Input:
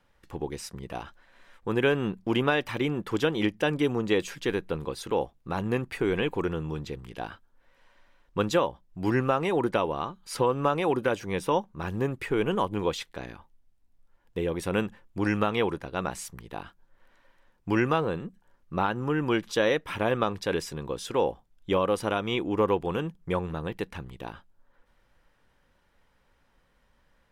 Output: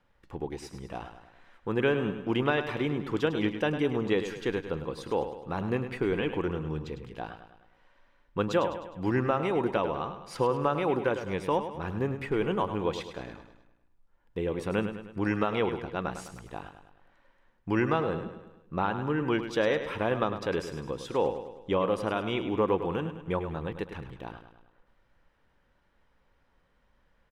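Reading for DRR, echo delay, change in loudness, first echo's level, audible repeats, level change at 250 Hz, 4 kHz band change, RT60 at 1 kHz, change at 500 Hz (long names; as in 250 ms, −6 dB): no reverb audible, 103 ms, −1.5 dB, −10.0 dB, 5, −1.5 dB, −4.5 dB, no reverb audible, −1.5 dB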